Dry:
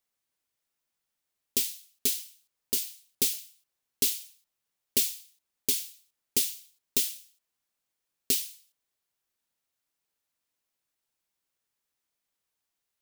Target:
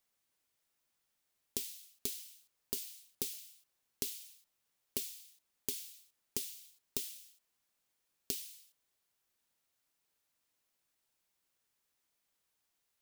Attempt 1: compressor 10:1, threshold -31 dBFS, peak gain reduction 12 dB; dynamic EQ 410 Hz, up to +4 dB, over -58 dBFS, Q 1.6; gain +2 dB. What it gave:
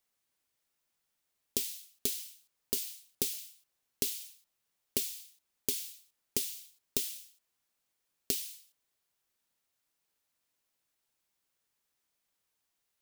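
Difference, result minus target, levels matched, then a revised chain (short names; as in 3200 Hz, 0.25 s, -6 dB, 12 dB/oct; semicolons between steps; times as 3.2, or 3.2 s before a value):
compressor: peak gain reduction -6.5 dB
compressor 10:1, threshold -38 dBFS, peak gain reduction 18.5 dB; dynamic EQ 410 Hz, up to +4 dB, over -58 dBFS, Q 1.6; gain +2 dB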